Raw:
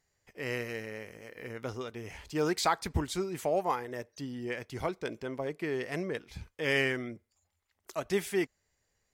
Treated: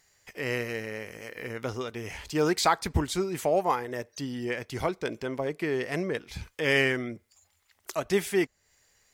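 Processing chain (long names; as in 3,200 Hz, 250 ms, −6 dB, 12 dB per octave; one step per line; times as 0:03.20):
one half of a high-frequency compander encoder only
level +4.5 dB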